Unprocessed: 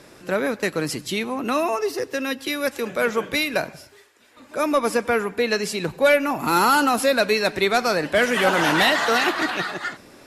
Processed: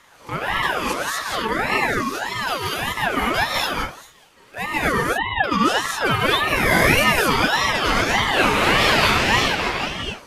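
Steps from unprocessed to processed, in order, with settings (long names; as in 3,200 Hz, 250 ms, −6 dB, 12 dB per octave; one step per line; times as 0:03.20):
0:04.92–0:05.44: three sine waves on the formant tracks
reverb whose tail is shaped and stops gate 270 ms rising, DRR −6.5 dB
ring modulator whose carrier an LFO sweeps 1,100 Hz, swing 40%, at 1.7 Hz
level −2.5 dB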